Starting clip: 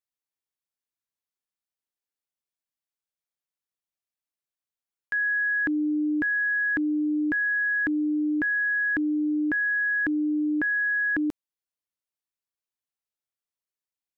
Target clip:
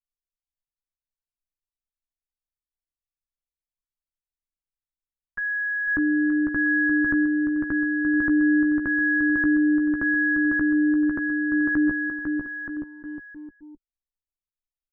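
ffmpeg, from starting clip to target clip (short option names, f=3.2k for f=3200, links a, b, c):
-filter_complex "[0:a]asplit=2[a][b];[b]adelay=14,volume=-7dB[c];[a][c]amix=inputs=2:normalize=0,alimiter=level_in=1.5dB:limit=-24dB:level=0:latency=1:release=50,volume=-1.5dB,atempo=0.95,lowpass=2k,aemphasis=mode=reproduction:type=riaa,aecho=1:1:500|925|1286|1593|1854:0.631|0.398|0.251|0.158|0.1,anlmdn=1,equalizer=f=1.2k:w=1.6:g=10,volume=1dB"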